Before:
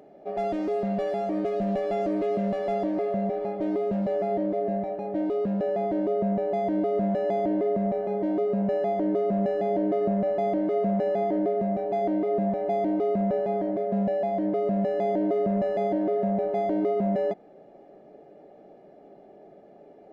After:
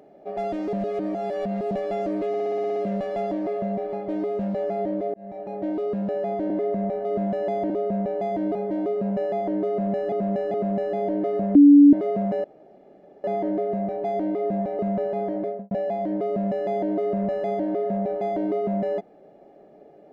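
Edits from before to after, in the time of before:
0.73–1.71 s: reverse
2.28 s: stutter 0.06 s, 9 plays
4.66–5.05 s: fade in
6.02–6.87 s: swap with 7.52–8.07 s
9.22–9.64 s: loop, 3 plays
10.23–10.61 s: bleep 287 Hz -7.5 dBFS
11.12 s: insert room tone 0.80 s
12.67–13.12 s: delete
13.78–14.04 s: studio fade out

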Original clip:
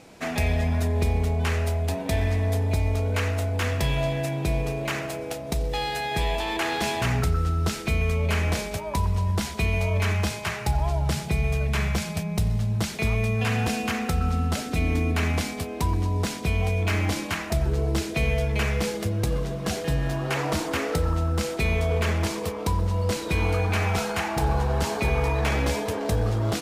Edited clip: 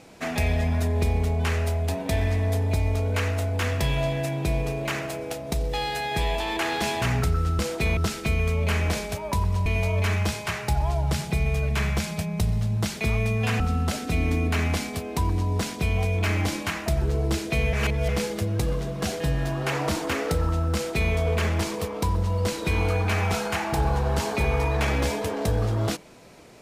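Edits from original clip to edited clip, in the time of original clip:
9.28–9.64 s: delete
13.58–14.24 s: delete
18.37–18.73 s: reverse
21.38–21.76 s: copy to 7.59 s

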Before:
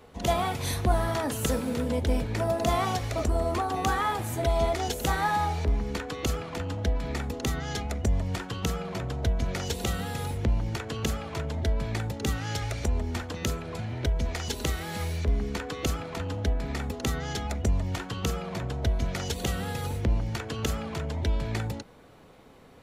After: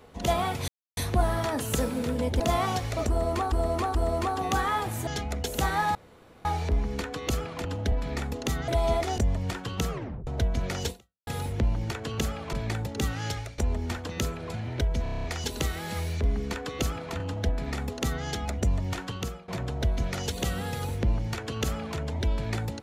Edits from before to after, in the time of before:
0.68 s: insert silence 0.29 s
2.11–2.59 s: delete
3.28–3.71 s: loop, 3 plays
4.40–4.90 s: swap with 7.66–8.03 s
5.41 s: insert room tone 0.50 s
6.61–6.90 s: swap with 16.24–16.51 s
8.75 s: tape stop 0.37 s
9.75–10.12 s: fade out exponential
11.38–11.78 s: delete
12.54–12.83 s: fade out, to -17.5 dB
14.28 s: stutter 0.03 s, 8 plays
18.09–18.50 s: fade out, to -21.5 dB

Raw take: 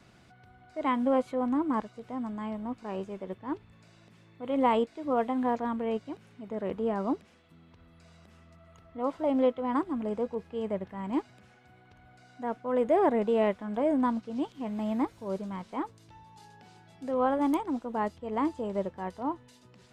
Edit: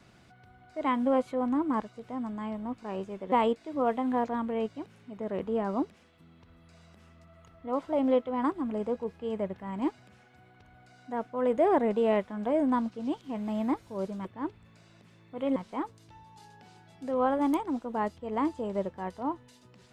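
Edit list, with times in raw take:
3.32–4.63 s: move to 15.56 s

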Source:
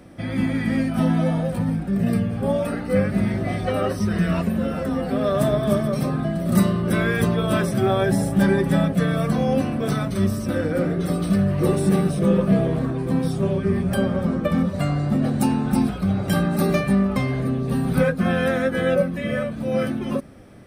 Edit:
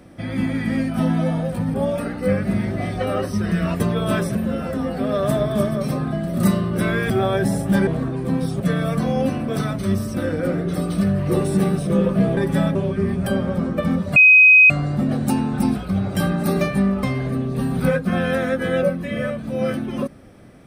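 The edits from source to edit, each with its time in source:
1.74–2.41 s: delete
7.22–7.77 s: move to 4.47 s
8.54–8.92 s: swap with 12.69–13.42 s
14.83 s: add tone 2.52 kHz -6.5 dBFS 0.54 s

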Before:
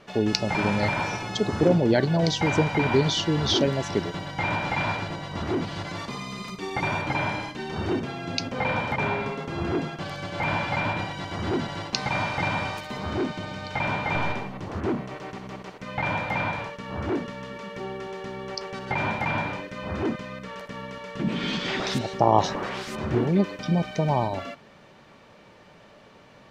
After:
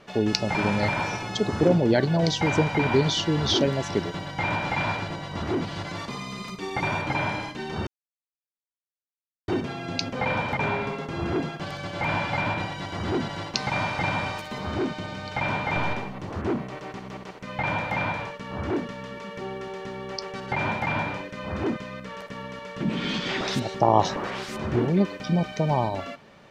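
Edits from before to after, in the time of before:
7.87 s: insert silence 1.61 s

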